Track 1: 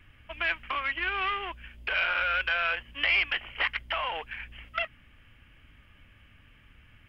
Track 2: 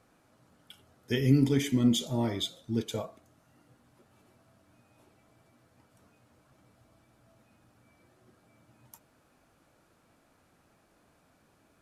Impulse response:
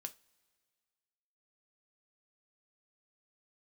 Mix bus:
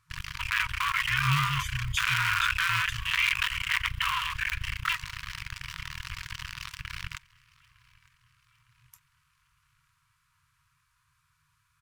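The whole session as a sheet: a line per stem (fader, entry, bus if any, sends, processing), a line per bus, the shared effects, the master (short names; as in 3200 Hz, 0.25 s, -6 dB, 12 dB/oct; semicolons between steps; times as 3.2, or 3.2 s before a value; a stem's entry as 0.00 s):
-3.0 dB, 0.10 s, send -3.5 dB, echo send -22.5 dB, cycle switcher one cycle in 2, muted; crossover distortion -54 dBFS; fast leveller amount 70%
-2.0 dB, 0.00 s, no send, no echo send, dry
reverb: on, pre-delay 3 ms
echo: feedback echo 0.908 s, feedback 48%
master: FFT band-reject 160–930 Hz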